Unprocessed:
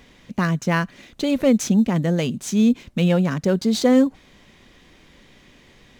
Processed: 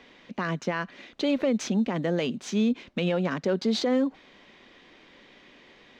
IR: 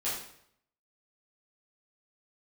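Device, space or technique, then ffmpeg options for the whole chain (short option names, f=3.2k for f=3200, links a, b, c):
DJ mixer with the lows and highs turned down: -filter_complex "[0:a]acrossover=split=230 5200:gain=0.158 1 0.0708[a][b][c];[a][b][c]amix=inputs=3:normalize=0,alimiter=limit=-17dB:level=0:latency=1:release=80"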